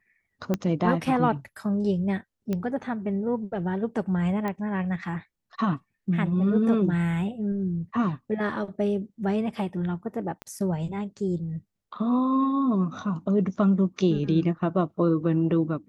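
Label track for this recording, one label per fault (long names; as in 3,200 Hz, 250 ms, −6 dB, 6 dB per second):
0.540000	0.540000	click −13 dBFS
2.530000	2.530000	click −17 dBFS
4.480000	4.480000	click −18 dBFS
10.420000	10.420000	click −23 dBFS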